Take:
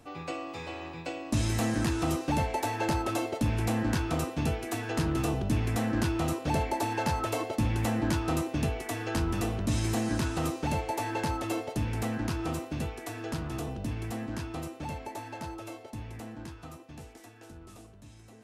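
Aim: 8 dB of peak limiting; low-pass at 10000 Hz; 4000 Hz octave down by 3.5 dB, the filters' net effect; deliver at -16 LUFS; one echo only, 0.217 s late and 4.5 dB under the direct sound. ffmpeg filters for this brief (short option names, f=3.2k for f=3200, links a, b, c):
-af "lowpass=10k,equalizer=f=4k:t=o:g=-4.5,alimiter=level_in=2dB:limit=-24dB:level=0:latency=1,volume=-2dB,aecho=1:1:217:0.596,volume=18dB"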